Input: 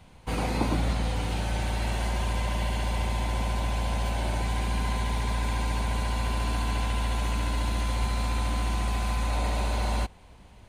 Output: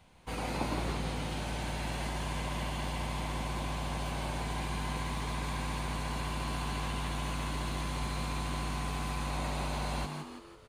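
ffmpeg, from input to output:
-filter_complex "[0:a]lowshelf=f=320:g=-5,asplit=7[a][b][c][d][e][f][g];[b]adelay=165,afreqshift=94,volume=-5.5dB[h];[c]adelay=330,afreqshift=188,volume=-12.1dB[i];[d]adelay=495,afreqshift=282,volume=-18.6dB[j];[e]adelay=660,afreqshift=376,volume=-25.2dB[k];[f]adelay=825,afreqshift=470,volume=-31.7dB[l];[g]adelay=990,afreqshift=564,volume=-38.3dB[m];[a][h][i][j][k][l][m]amix=inputs=7:normalize=0,volume=-5.5dB"

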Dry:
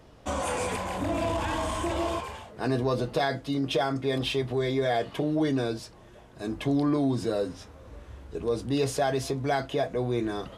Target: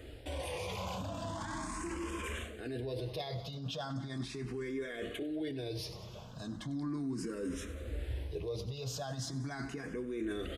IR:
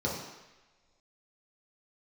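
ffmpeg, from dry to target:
-filter_complex "[0:a]equalizer=f=770:t=o:w=1.2:g=-8,areverse,acompressor=threshold=-35dB:ratio=10,areverse,aecho=1:1:96|192|288|384|480:0.158|0.0856|0.0462|0.025|0.0135,alimiter=level_in=12.5dB:limit=-24dB:level=0:latency=1:release=26,volume=-12.5dB,asplit=2[a][b];[b]afreqshift=0.38[c];[a][c]amix=inputs=2:normalize=1,volume=8dB"

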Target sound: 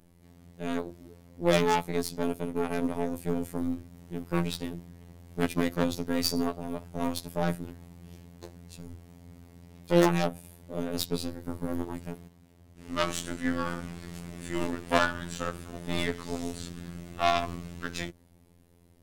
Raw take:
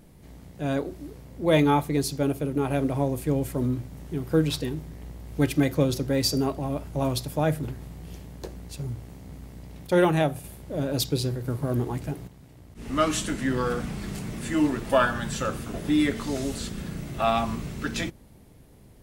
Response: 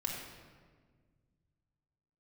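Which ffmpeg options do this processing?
-af "aeval=exprs='0.398*(cos(1*acos(clip(val(0)/0.398,-1,1)))-cos(1*PI/2))+0.158*(cos(4*acos(clip(val(0)/0.398,-1,1)))-cos(4*PI/2))+0.126*(cos(6*acos(clip(val(0)/0.398,-1,1)))-cos(6*PI/2))+0.0282*(cos(7*acos(clip(val(0)/0.398,-1,1)))-cos(7*PI/2))+0.0141*(cos(8*acos(clip(val(0)/0.398,-1,1)))-cos(8*PI/2))':c=same,afftfilt=real='hypot(re,im)*cos(PI*b)':imag='0':win_size=2048:overlap=0.75,volume=1.5dB"

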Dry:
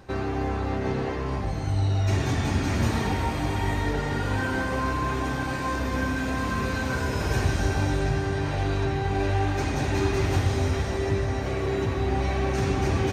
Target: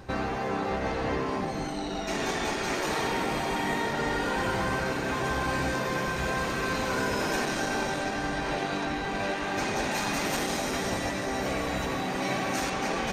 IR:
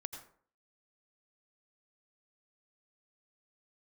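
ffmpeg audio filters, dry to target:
-filter_complex "[0:a]asettb=1/sr,asplit=3[a][b][c];[a]atrim=end=9.914[d];[b]atrim=start=9.91:end=12.7,asetpts=PTS-STARTPTS,afade=t=in:d=0.004:c=qsin,afade=t=out:st=2.786:d=0.004:c=qsin,highshelf=f=8.6k:g=12[e];[c]atrim=start=12.696[f];[d][e]acrossfade=d=0.004:c1=hsin:c2=qsin[g];[g][f]acrossfade=d=0.004:c1=qsin:c2=hsin,asoftclip=type=tanh:threshold=-16.5dB,afftfilt=real='re*lt(hypot(re,im),0.2)':imag='im*lt(hypot(re,im),0.2)':win_size=1024:overlap=0.75,volume=3dB"

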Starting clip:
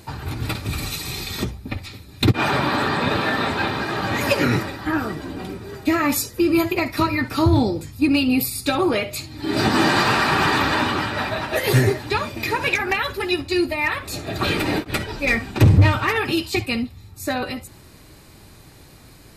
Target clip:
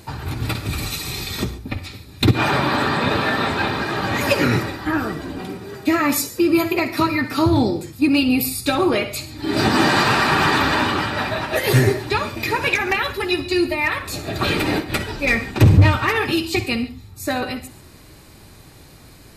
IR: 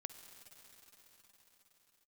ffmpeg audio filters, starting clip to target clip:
-filter_complex "[0:a]asettb=1/sr,asplit=3[a][b][c];[a]atrim=end=5.414[d];[b]atrim=start=5.41:end=8.23,asetpts=PTS-STARTPTS,afade=t=in:d=0.004:c=qsin,afade=t=out:st=2.816:d=0.004:c=qsin,highpass=110[e];[c]atrim=start=8.226[f];[d][e]acrossfade=d=0.004:c1=hsin:c2=qsin[g];[g][f]acrossfade=d=0.004:c1=qsin:c2=hsin[h];[1:a]atrim=start_sample=2205,atrim=end_sample=6615[i];[h][i]afir=irnorm=-1:irlink=0,volume=6dB"

